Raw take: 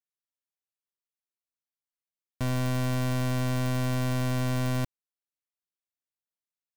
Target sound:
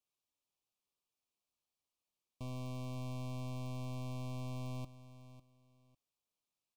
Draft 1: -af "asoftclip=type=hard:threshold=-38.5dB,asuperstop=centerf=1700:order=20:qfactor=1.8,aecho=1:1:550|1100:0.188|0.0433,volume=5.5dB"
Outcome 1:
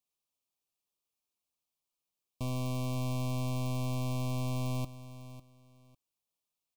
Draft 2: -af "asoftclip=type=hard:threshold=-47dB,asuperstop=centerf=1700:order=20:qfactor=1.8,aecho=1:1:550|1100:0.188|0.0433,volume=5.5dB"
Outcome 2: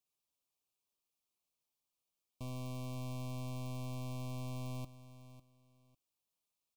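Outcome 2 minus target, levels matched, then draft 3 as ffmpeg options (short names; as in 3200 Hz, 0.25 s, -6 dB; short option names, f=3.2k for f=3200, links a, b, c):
8000 Hz band +3.5 dB
-af "asoftclip=type=hard:threshold=-47dB,asuperstop=centerf=1700:order=20:qfactor=1.8,highshelf=f=9k:g=-9,aecho=1:1:550|1100:0.188|0.0433,volume=5.5dB"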